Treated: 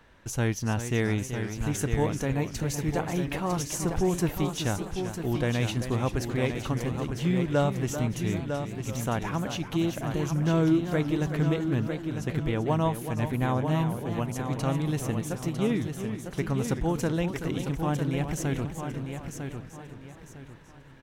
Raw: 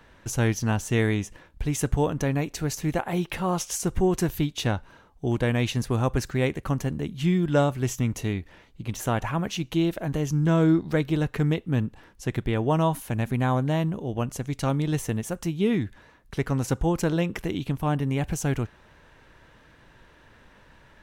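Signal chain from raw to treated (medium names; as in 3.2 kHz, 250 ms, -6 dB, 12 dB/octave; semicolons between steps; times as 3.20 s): feedback delay 952 ms, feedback 30%, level -7 dB; modulated delay 384 ms, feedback 40%, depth 144 cents, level -10 dB; trim -3.5 dB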